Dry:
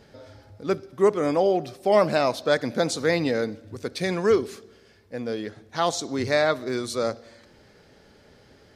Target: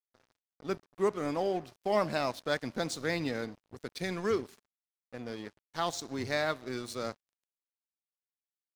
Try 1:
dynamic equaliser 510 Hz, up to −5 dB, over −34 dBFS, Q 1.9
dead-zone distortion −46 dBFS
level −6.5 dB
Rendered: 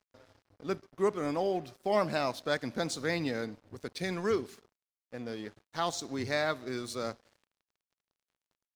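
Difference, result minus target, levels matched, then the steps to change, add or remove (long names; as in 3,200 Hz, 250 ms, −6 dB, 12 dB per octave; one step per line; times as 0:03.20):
dead-zone distortion: distortion −5 dB
change: dead-zone distortion −40 dBFS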